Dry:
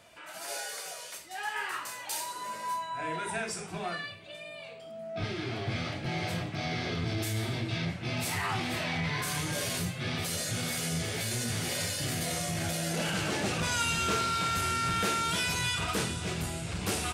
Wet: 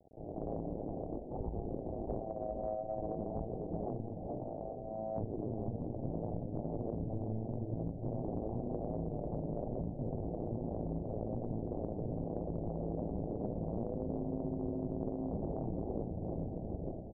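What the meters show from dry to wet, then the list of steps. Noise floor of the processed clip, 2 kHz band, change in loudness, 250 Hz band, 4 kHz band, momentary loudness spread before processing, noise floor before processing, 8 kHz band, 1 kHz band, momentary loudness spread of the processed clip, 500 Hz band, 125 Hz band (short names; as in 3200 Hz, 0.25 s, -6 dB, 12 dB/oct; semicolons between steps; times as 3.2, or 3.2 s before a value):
-44 dBFS, under -40 dB, -8.0 dB, -1.5 dB, under -40 dB, 9 LU, -45 dBFS, under -40 dB, -12.0 dB, 3 LU, -0.5 dB, -4.5 dB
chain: ending faded out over 1.03 s; sample-and-hold 27×; crossover distortion -55.5 dBFS; steep low-pass 700 Hz 72 dB/oct; AM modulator 110 Hz, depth 100%; on a send: feedback echo 0.422 s, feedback 46%, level -13 dB; on the sum: compressor 6:1, threshold -46 dBFS, peak gain reduction 16.5 dB; Doppler distortion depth 0.23 ms; gain +11.5 dB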